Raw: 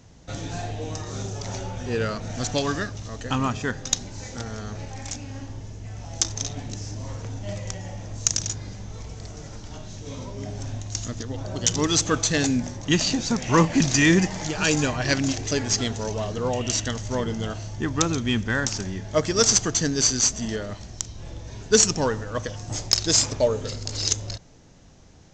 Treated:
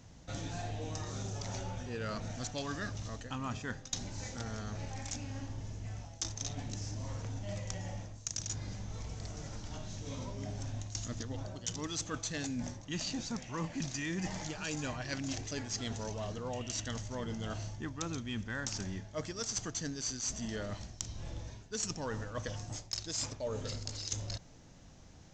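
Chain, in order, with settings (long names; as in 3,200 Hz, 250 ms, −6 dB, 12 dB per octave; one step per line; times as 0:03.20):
parametric band 410 Hz −4 dB 0.45 octaves
reversed playback
downward compressor 6 to 1, threshold −31 dBFS, peak gain reduction 17 dB
reversed playback
level −4.5 dB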